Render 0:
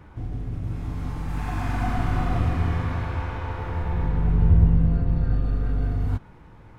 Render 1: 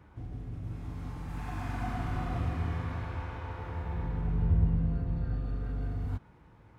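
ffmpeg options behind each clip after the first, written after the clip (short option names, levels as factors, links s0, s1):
-af "highpass=41,volume=0.376"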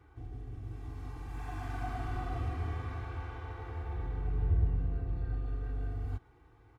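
-af "aecho=1:1:2.6:0.9,volume=0.501"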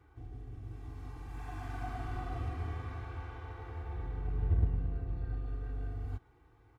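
-af "aeval=exprs='0.126*(cos(1*acos(clip(val(0)/0.126,-1,1)))-cos(1*PI/2))+0.0141*(cos(3*acos(clip(val(0)/0.126,-1,1)))-cos(3*PI/2))':c=same,volume=1.12"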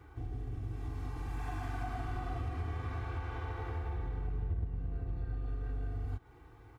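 -af "acompressor=threshold=0.00794:ratio=4,volume=2.37"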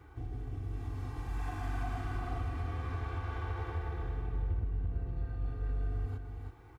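-af "aecho=1:1:330:0.531"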